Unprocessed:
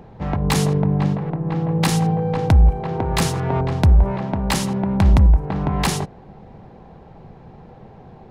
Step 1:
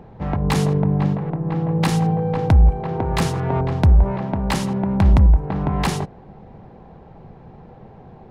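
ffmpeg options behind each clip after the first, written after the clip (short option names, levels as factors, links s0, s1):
-af "highshelf=f=3700:g=-7.5"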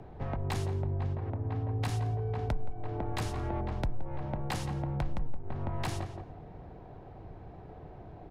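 -filter_complex "[0:a]afreqshift=-54,asplit=2[s0][s1];[s1]adelay=172,lowpass=f=1900:p=1,volume=0.282,asplit=2[s2][s3];[s3]adelay=172,lowpass=f=1900:p=1,volume=0.18[s4];[s0][s2][s4]amix=inputs=3:normalize=0,acompressor=threshold=0.0355:ratio=2.5,volume=0.562"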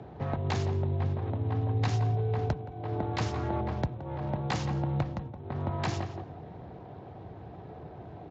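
-af "volume=1.58" -ar 16000 -c:a libspeex -b:a 34k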